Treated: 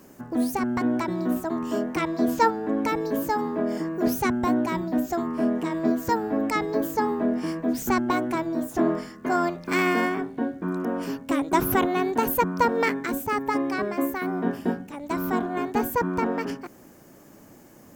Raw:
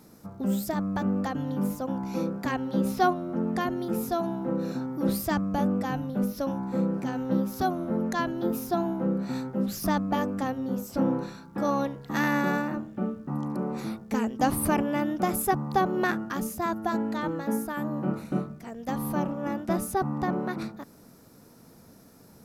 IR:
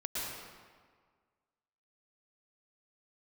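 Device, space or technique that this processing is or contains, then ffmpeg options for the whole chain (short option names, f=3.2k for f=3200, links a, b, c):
nightcore: -af "asetrate=55125,aresample=44100,volume=3dB"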